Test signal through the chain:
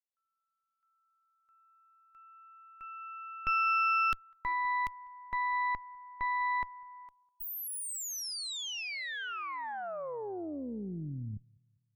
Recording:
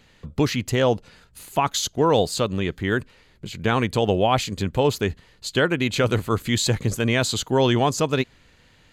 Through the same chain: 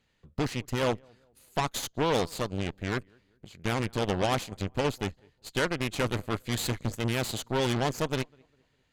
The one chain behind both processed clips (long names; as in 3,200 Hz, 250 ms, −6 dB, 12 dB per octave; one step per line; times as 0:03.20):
feedback echo with a low-pass in the loop 200 ms, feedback 42%, low-pass 1,800 Hz, level −22 dB
harmonic generator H 8 −14 dB, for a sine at −7 dBFS
expander for the loud parts 1.5 to 1, over −33 dBFS
level −8 dB